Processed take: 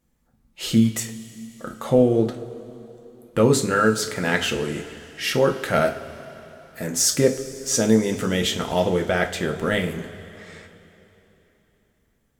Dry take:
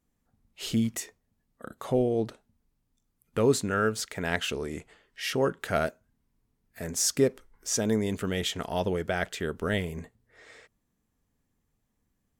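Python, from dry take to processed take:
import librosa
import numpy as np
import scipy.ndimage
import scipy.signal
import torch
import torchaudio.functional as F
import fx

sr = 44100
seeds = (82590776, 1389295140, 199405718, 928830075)

y = fx.rev_double_slope(x, sr, seeds[0], early_s=0.29, late_s=3.5, knee_db=-18, drr_db=2.5)
y = F.gain(torch.from_numpy(y), 5.5).numpy()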